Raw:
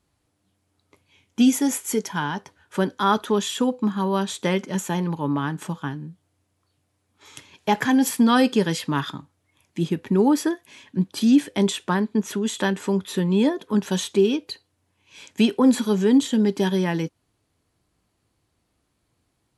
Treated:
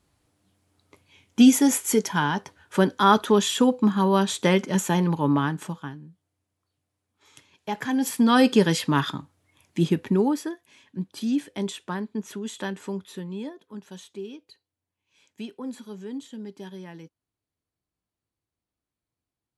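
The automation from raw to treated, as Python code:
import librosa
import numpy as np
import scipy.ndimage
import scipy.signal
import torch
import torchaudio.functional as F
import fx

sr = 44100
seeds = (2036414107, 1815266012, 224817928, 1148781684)

y = fx.gain(x, sr, db=fx.line((5.38, 2.5), (6.04, -9.5), (7.7, -9.5), (8.53, 2.0), (10.01, 2.0), (10.42, -8.5), (12.88, -8.5), (13.66, -18.0)))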